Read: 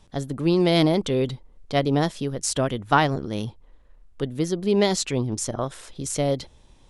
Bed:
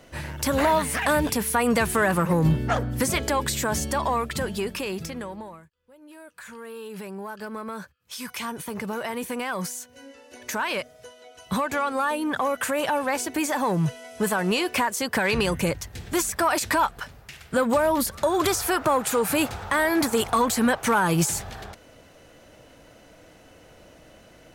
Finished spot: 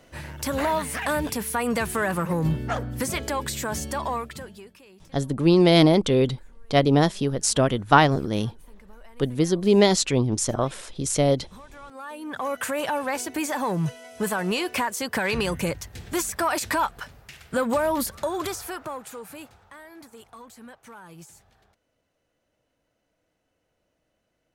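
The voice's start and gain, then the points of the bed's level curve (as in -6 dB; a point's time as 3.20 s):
5.00 s, +3.0 dB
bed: 4.15 s -3.5 dB
4.80 s -21.5 dB
11.71 s -21.5 dB
12.54 s -2 dB
18.04 s -2 dB
19.83 s -24 dB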